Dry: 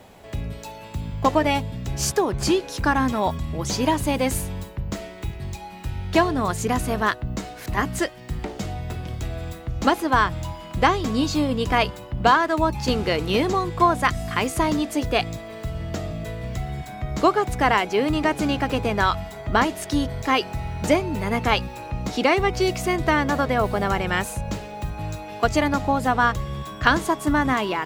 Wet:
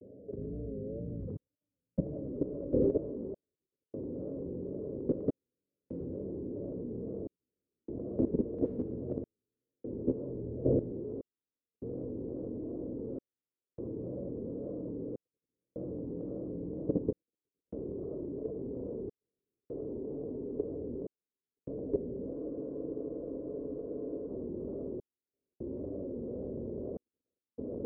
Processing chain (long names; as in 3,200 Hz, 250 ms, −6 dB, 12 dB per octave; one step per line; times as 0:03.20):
Butterworth low-pass 520 Hz 72 dB per octave
echo that builds up and dies away 194 ms, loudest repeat 8, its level −11.5 dB
compressor whose output falls as the input rises −29 dBFS, ratio −0.5
convolution reverb RT60 0.95 s, pre-delay 76 ms, DRR −6 dB
gate pattern "xxxxxxxxx...." 99 BPM −60 dB
high-pass filter 410 Hz 6 dB per octave
tape wow and flutter 110 cents
output level in coarse steps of 13 dB
frozen spectrum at 0:22.36, 1.94 s